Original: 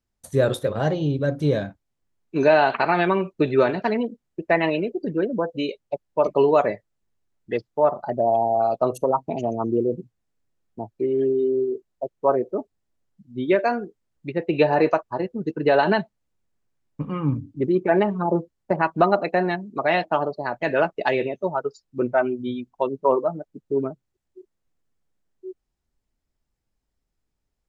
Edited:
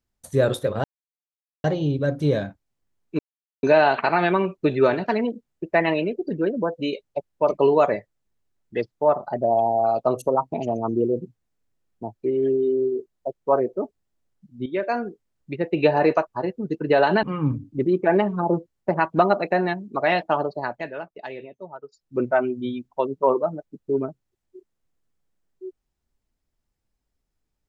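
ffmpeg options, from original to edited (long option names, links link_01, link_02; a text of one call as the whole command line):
ffmpeg -i in.wav -filter_complex "[0:a]asplit=7[link_01][link_02][link_03][link_04][link_05][link_06][link_07];[link_01]atrim=end=0.84,asetpts=PTS-STARTPTS,afade=type=out:start_time=0.836:duration=0.004:curve=hsin,apad=pad_dur=0.8[link_08];[link_02]atrim=start=0.84:end=2.39,asetpts=PTS-STARTPTS,afade=type=in:duration=0.004:curve=hsin,afade=type=out:start_time=1.546:duration=0.004:curve=hsin,apad=pad_dur=0.44[link_09];[link_03]atrim=start=2.39:end=13.42,asetpts=PTS-STARTPTS,afade=type=in:duration=0.004:curve=hsin,afade=type=out:start_time=11.026:duration=0.004:curve=hsin:silence=0.251189[link_10];[link_04]atrim=start=13.42:end=15.992,asetpts=PTS-STARTPTS,afade=type=in:duration=0.4:silence=0.251189[link_11];[link_05]atrim=start=17.048:end=20.73,asetpts=PTS-STARTPTS,afade=type=out:start_time=3.412:duration=0.27:silence=0.211349[link_12];[link_06]atrim=start=20.73:end=21.71,asetpts=PTS-STARTPTS,volume=-13.5dB[link_13];[link_07]atrim=start=21.71,asetpts=PTS-STARTPTS,afade=type=in:duration=0.27:silence=0.211349[link_14];[link_08][link_09][link_10][link_11]concat=n=4:v=0:a=1[link_15];[link_12][link_13][link_14]concat=n=3:v=0:a=1[link_16];[link_15][link_16]acrossfade=duration=0.004:curve1=hsin:curve2=hsin" out.wav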